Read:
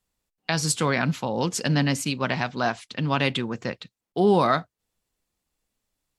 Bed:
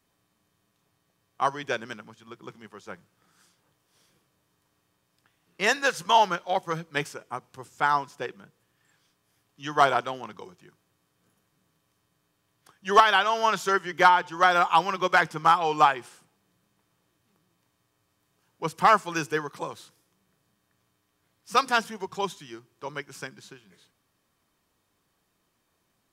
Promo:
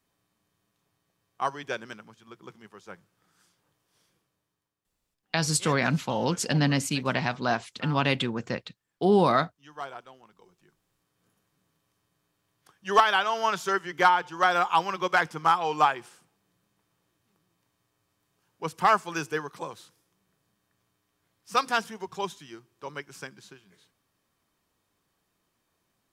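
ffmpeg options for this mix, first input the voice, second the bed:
-filter_complex "[0:a]adelay=4850,volume=-1.5dB[a];[1:a]volume=11.5dB,afade=t=out:st=3.92:d=0.84:silence=0.199526,afade=t=in:st=10.36:d=0.87:silence=0.177828[b];[a][b]amix=inputs=2:normalize=0"

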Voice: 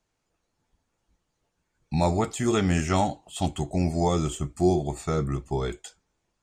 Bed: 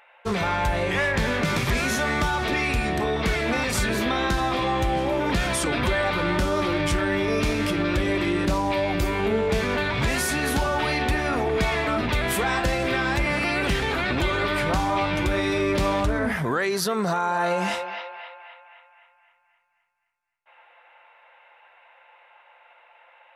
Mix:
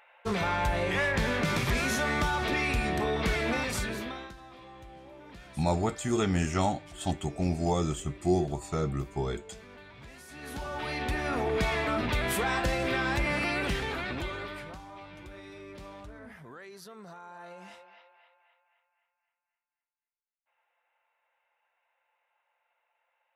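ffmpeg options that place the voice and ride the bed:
-filter_complex "[0:a]adelay=3650,volume=-4dB[a];[1:a]volume=16dB,afade=t=out:st=3.46:d=0.88:silence=0.0891251,afade=t=in:st=10.27:d=1.21:silence=0.0944061,afade=t=out:st=13.41:d=1.38:silence=0.125893[b];[a][b]amix=inputs=2:normalize=0"

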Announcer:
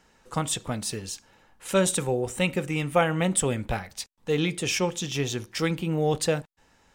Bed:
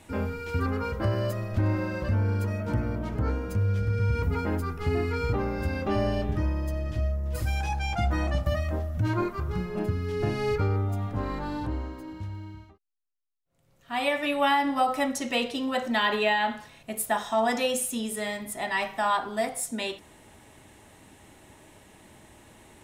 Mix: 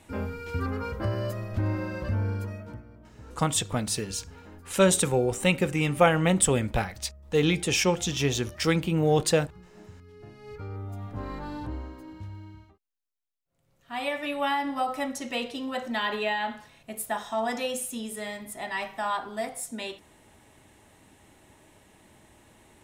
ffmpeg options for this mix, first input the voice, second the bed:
-filter_complex "[0:a]adelay=3050,volume=2dB[a];[1:a]volume=13.5dB,afade=t=out:st=2.25:d=0.58:silence=0.133352,afade=t=in:st=10.42:d=0.93:silence=0.158489[b];[a][b]amix=inputs=2:normalize=0"

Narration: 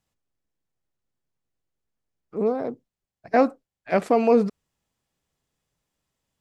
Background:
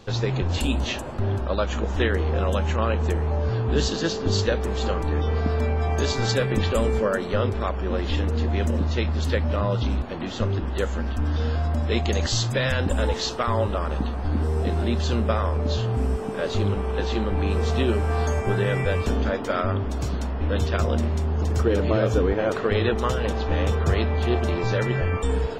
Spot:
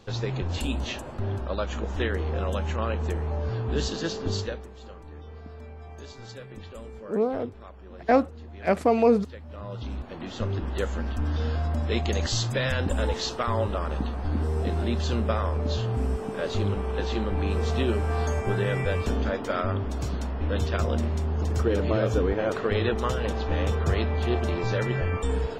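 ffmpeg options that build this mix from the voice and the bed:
-filter_complex "[0:a]adelay=4750,volume=-1.5dB[a];[1:a]volume=11.5dB,afade=t=out:st=4.27:d=0.42:silence=0.188365,afade=t=in:st=9.46:d=1.24:silence=0.149624[b];[a][b]amix=inputs=2:normalize=0"

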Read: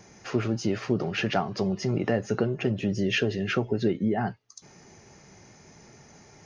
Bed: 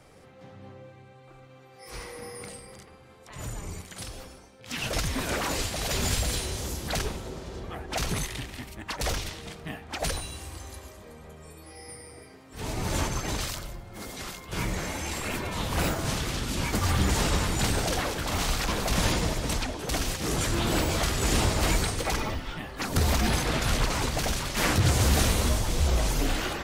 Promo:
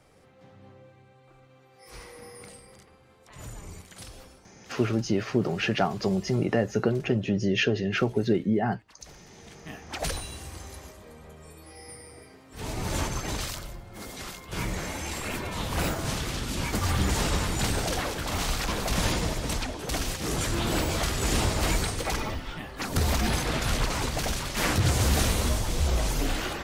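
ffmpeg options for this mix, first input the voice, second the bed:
-filter_complex "[0:a]adelay=4450,volume=1dB[a];[1:a]volume=17dB,afade=t=out:st=4.37:d=0.61:silence=0.125893,afade=t=in:st=9.27:d=0.65:silence=0.0794328[b];[a][b]amix=inputs=2:normalize=0"

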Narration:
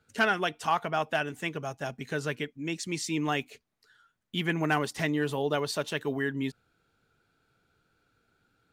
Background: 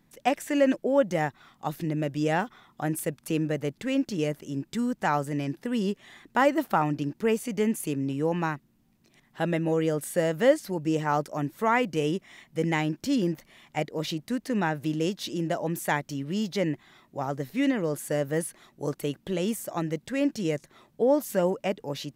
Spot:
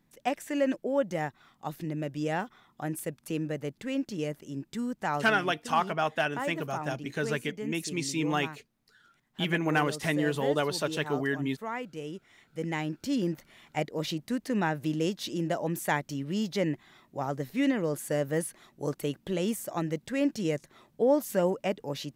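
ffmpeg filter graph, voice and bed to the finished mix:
-filter_complex "[0:a]adelay=5050,volume=0.5dB[a];[1:a]volume=5.5dB,afade=t=out:st=5.18:d=0.21:silence=0.446684,afade=t=in:st=12.12:d=1.48:silence=0.298538[b];[a][b]amix=inputs=2:normalize=0"

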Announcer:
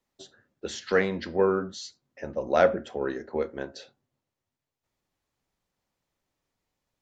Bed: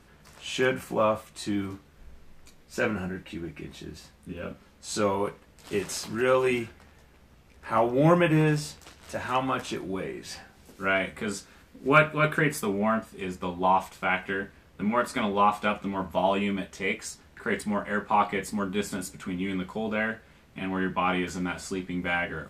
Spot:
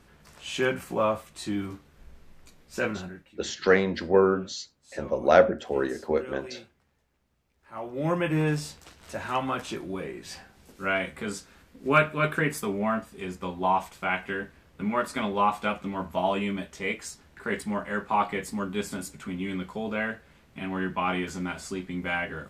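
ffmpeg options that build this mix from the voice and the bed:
-filter_complex "[0:a]adelay=2750,volume=3dB[a];[1:a]volume=15dB,afade=t=out:st=2.81:d=0.51:silence=0.149624,afade=t=in:st=7.71:d=0.83:silence=0.158489[b];[a][b]amix=inputs=2:normalize=0"

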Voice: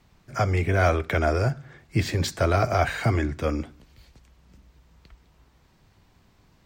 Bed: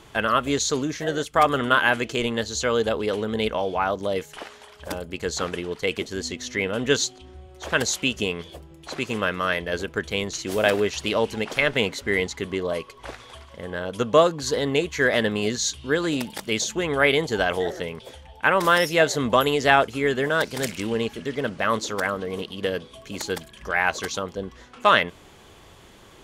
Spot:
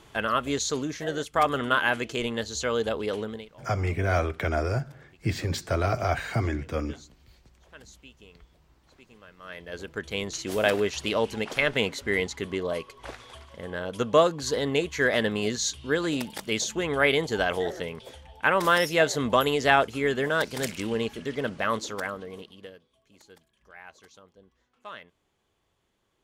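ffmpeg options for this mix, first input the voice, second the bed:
-filter_complex "[0:a]adelay=3300,volume=-4dB[a];[1:a]volume=19.5dB,afade=t=out:st=3.21:d=0.25:silence=0.0749894,afade=t=in:st=9.37:d=1:silence=0.0630957,afade=t=out:st=21.54:d=1.25:silence=0.0794328[b];[a][b]amix=inputs=2:normalize=0"

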